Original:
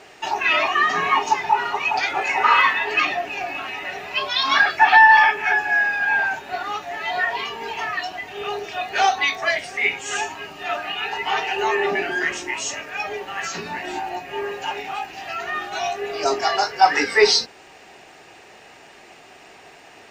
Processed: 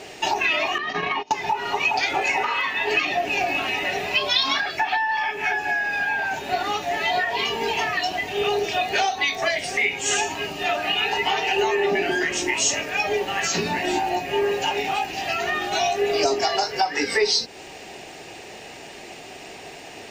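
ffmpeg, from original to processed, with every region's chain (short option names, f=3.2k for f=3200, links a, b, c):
-filter_complex "[0:a]asettb=1/sr,asplit=3[a][b][c];[a]atrim=end=0.784[d];[b]atrim=start=0.78:end=1.31,asetpts=PTS-STARTPTS,afade=t=in:d=0.004:c=qsin,afade=t=out:st=0.526:d=0.004:c=qsin,agate=range=-28dB:threshold=-22dB:ratio=16:release=100:detection=peak,lowpass=f=5k:w=0.5412,lowpass=f=5k:w=1.3066,acompressor=threshold=-22dB:ratio=5:attack=3.2:release=140:knee=1:detection=peak[e];[c]atrim=start=1.306[f];[d][e]acrossfade=d=0.004:c1=hsin:c2=qsin[g];[g][f]acrossfade=d=0.004:c1=qsin:c2=hsin,acompressor=threshold=-24dB:ratio=12,equalizer=f=1.3k:t=o:w=1.2:g=-9,volume=9dB"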